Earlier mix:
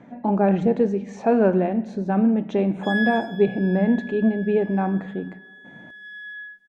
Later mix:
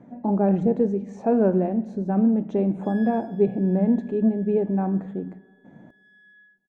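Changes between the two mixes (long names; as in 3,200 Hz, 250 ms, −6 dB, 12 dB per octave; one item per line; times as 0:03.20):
background −7.5 dB
master: add parametric band 2,900 Hz −13 dB 2.8 octaves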